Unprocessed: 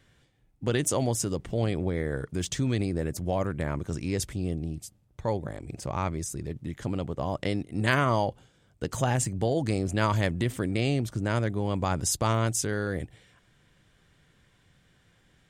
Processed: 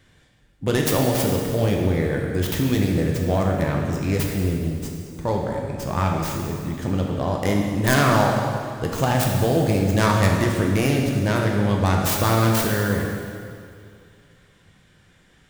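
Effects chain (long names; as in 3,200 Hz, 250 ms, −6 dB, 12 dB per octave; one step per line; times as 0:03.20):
stylus tracing distortion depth 0.5 ms
dense smooth reverb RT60 2.3 s, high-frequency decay 0.85×, DRR −0.5 dB
level +4.5 dB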